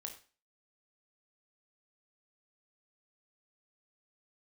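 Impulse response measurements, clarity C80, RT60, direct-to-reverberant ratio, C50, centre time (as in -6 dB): 14.0 dB, 0.35 s, 2.0 dB, 9.0 dB, 17 ms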